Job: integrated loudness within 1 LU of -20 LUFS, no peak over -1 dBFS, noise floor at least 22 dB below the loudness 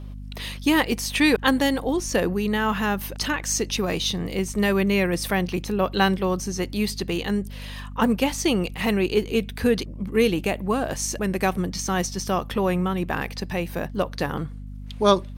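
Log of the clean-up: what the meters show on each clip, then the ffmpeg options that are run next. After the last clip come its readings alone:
hum 50 Hz; harmonics up to 250 Hz; hum level -34 dBFS; loudness -24.0 LUFS; peak -5.0 dBFS; loudness target -20.0 LUFS
-> -af "bandreject=f=50:t=h:w=6,bandreject=f=100:t=h:w=6,bandreject=f=150:t=h:w=6,bandreject=f=200:t=h:w=6,bandreject=f=250:t=h:w=6"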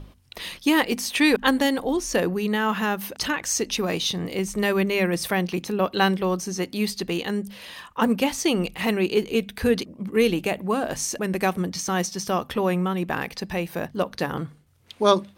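hum none; loudness -24.5 LUFS; peak -4.5 dBFS; loudness target -20.0 LUFS
-> -af "volume=4.5dB,alimiter=limit=-1dB:level=0:latency=1"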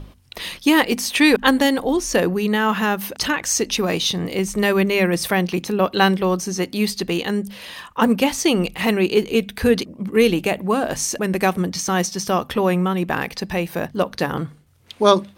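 loudness -20.0 LUFS; peak -1.0 dBFS; noise floor -49 dBFS

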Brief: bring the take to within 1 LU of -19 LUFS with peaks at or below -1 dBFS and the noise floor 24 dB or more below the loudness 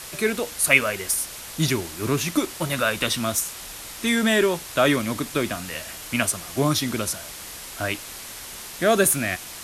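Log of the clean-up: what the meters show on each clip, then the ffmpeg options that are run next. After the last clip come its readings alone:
noise floor -38 dBFS; noise floor target -47 dBFS; loudness -23.0 LUFS; peak -2.5 dBFS; loudness target -19.0 LUFS
-> -af "afftdn=nr=9:nf=-38"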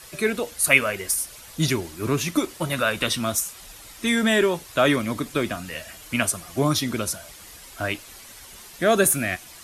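noise floor -45 dBFS; noise floor target -48 dBFS
-> -af "afftdn=nr=6:nf=-45"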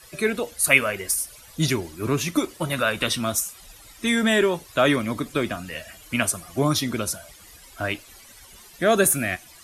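noise floor -48 dBFS; loudness -23.5 LUFS; peak -2.5 dBFS; loudness target -19.0 LUFS
-> -af "volume=4.5dB,alimiter=limit=-1dB:level=0:latency=1"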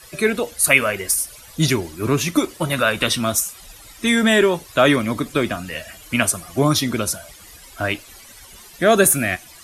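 loudness -19.0 LUFS; peak -1.0 dBFS; noise floor -44 dBFS

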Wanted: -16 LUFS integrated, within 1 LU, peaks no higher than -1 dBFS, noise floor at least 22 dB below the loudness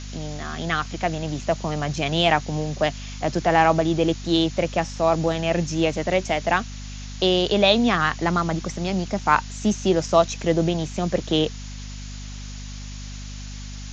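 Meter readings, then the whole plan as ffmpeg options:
hum 50 Hz; harmonics up to 250 Hz; hum level -33 dBFS; noise floor -35 dBFS; noise floor target -45 dBFS; loudness -22.5 LUFS; peak -2.5 dBFS; loudness target -16.0 LUFS
-> -af "bandreject=f=50:t=h:w=4,bandreject=f=100:t=h:w=4,bandreject=f=150:t=h:w=4,bandreject=f=200:t=h:w=4,bandreject=f=250:t=h:w=4"
-af "afftdn=nr=10:nf=-35"
-af "volume=6.5dB,alimiter=limit=-1dB:level=0:latency=1"

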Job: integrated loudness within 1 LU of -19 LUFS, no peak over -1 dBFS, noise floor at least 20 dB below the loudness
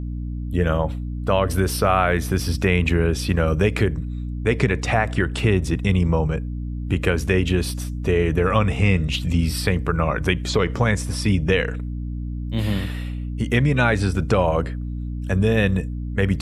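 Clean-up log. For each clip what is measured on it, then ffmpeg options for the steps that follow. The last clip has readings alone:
hum 60 Hz; harmonics up to 300 Hz; hum level -25 dBFS; loudness -21.5 LUFS; peak -4.0 dBFS; loudness target -19.0 LUFS
-> -af "bandreject=f=60:t=h:w=4,bandreject=f=120:t=h:w=4,bandreject=f=180:t=h:w=4,bandreject=f=240:t=h:w=4,bandreject=f=300:t=h:w=4"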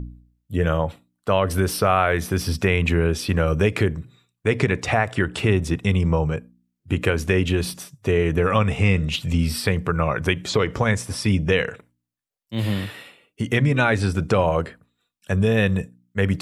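hum none; loudness -22.0 LUFS; peak -4.5 dBFS; loudness target -19.0 LUFS
-> -af "volume=3dB"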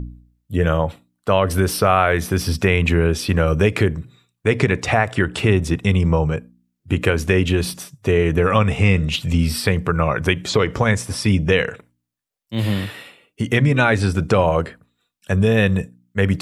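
loudness -19.0 LUFS; peak -1.5 dBFS; noise floor -77 dBFS

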